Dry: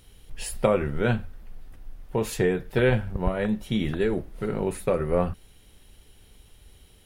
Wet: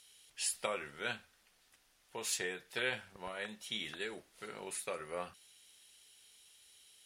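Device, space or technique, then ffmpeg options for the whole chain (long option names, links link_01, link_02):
piezo pickup straight into a mixer: -af "lowpass=7100,aderivative,volume=5dB"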